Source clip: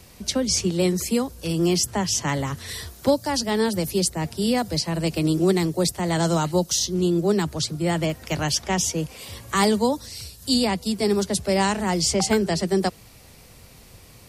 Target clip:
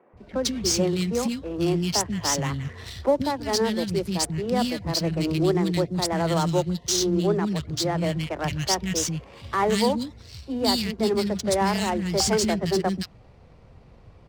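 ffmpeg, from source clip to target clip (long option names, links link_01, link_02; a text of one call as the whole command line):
ffmpeg -i in.wav -filter_complex "[0:a]acrossover=split=270|2000[link_01][link_02][link_03];[link_01]adelay=130[link_04];[link_03]adelay=170[link_05];[link_04][link_02][link_05]amix=inputs=3:normalize=0,adynamicsmooth=sensitivity=7:basefreq=1500" out.wav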